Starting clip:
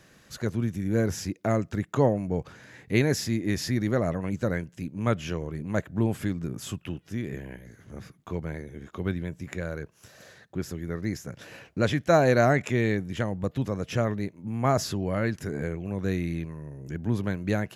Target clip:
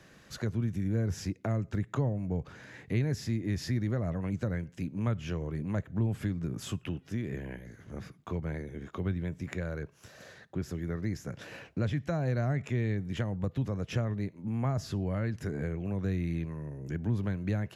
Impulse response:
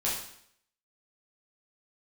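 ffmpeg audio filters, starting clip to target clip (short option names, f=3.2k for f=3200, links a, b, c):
-filter_complex "[0:a]asplit=2[a][b];[1:a]atrim=start_sample=2205,afade=t=out:st=0.21:d=0.01,atrim=end_sample=9702,asetrate=52920,aresample=44100[c];[b][c]afir=irnorm=-1:irlink=0,volume=-28.5dB[d];[a][d]amix=inputs=2:normalize=0,acrossover=split=160[e][f];[f]acompressor=threshold=-34dB:ratio=6[g];[e][g]amix=inputs=2:normalize=0,highshelf=f=6.9k:g=-7.5"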